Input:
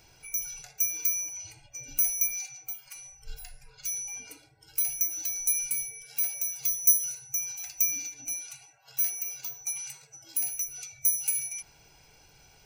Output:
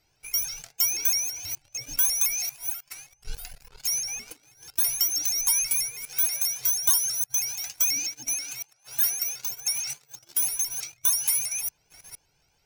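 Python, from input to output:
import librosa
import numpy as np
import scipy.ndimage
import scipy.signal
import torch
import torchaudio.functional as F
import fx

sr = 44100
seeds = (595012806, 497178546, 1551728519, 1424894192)

y = fx.reverse_delay(x, sr, ms=392, wet_db=-13)
y = fx.leveller(y, sr, passes=3)
y = fx.vibrato_shape(y, sr, shape='saw_up', rate_hz=6.2, depth_cents=160.0)
y = y * librosa.db_to_amplitude(-5.5)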